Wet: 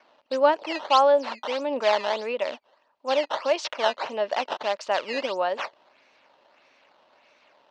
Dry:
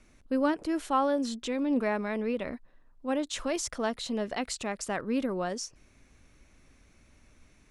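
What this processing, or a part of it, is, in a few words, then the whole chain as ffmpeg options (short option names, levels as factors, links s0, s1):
circuit-bent sampling toy: -af "acrusher=samples=11:mix=1:aa=0.000001:lfo=1:lforange=17.6:lforate=1.6,highpass=570,equalizer=f=590:t=q:w=4:g=9,equalizer=f=910:t=q:w=4:g=8,equalizer=f=2800:t=q:w=4:g=6,equalizer=f=4300:t=q:w=4:g=4,lowpass=f=5000:w=0.5412,lowpass=f=5000:w=1.3066,volume=1.78"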